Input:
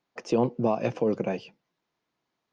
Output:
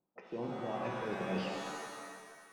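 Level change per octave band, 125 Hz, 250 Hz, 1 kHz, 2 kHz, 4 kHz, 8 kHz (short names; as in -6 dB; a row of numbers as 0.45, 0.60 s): -10.0 dB, -11.5 dB, -6.0 dB, -0.5 dB, -0.5 dB, n/a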